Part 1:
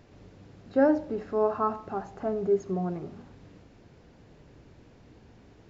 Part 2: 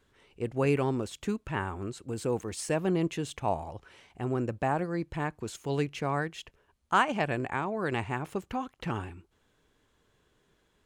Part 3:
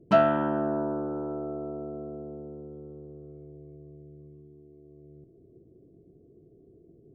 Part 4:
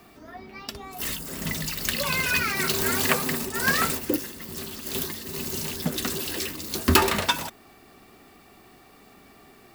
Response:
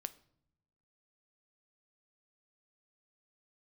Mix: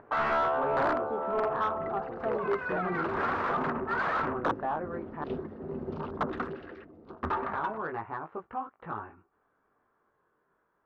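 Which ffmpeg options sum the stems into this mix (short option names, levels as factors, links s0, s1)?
-filter_complex "[0:a]alimiter=limit=0.141:level=0:latency=1:release=304,acompressor=mode=upward:threshold=0.00501:ratio=2.5,volume=0.266[s0];[1:a]flanger=delay=18:depth=4.7:speed=0.24,asoftclip=type=tanh:threshold=0.0841,volume=0.299,asplit=3[s1][s2][s3];[s1]atrim=end=5.24,asetpts=PTS-STARTPTS,afade=t=out:st=5.236:d=0.004:c=hsin[s4];[s2]atrim=start=5.24:end=7.42,asetpts=PTS-STARTPTS,volume=0[s5];[s3]atrim=start=7.42,asetpts=PTS-STARTPTS,afade=t=in:d=0.004:c=hsin[s6];[s4][s5][s6]concat=n=3:v=0:a=1[s7];[2:a]asoftclip=type=tanh:threshold=0.126,highpass=f=530:w=0.5412,highpass=f=530:w=1.3066,asplit=2[s8][s9];[s9]adelay=2.3,afreqshift=2[s10];[s8][s10]amix=inputs=2:normalize=1,volume=0.841[s11];[3:a]afwtdn=0.0141,lowshelf=f=130:g=9.5,adelay=350,volume=0.376,afade=t=in:st=2.82:d=0.47:silence=0.266073,afade=t=out:st=6.24:d=0.51:silence=0.237137[s12];[s0][s7][s11][s12]amix=inputs=4:normalize=0,aeval=exprs='(mod(23.7*val(0)+1,2)-1)/23.7':c=same,lowpass=f=1300:t=q:w=2.3,asplit=2[s13][s14];[s14]highpass=f=720:p=1,volume=10,asoftclip=type=tanh:threshold=0.178[s15];[s13][s15]amix=inputs=2:normalize=0,lowpass=f=1000:p=1,volume=0.501"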